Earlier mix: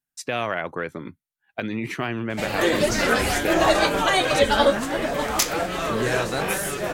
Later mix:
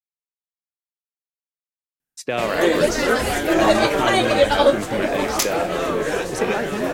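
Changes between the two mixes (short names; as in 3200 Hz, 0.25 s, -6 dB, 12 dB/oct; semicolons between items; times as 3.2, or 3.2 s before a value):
speech: entry +2.00 s; master: add bell 420 Hz +5 dB 1.4 oct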